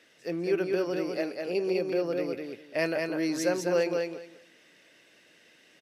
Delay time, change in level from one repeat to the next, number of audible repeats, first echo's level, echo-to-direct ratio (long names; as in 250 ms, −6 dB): 200 ms, −14.5 dB, 3, −4.0 dB, −4.0 dB